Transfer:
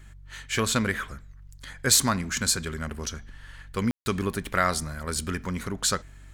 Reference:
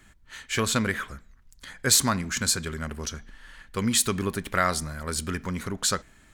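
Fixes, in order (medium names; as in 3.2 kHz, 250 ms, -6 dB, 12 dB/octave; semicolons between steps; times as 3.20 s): de-hum 47.6 Hz, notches 3; room tone fill 3.91–4.06 s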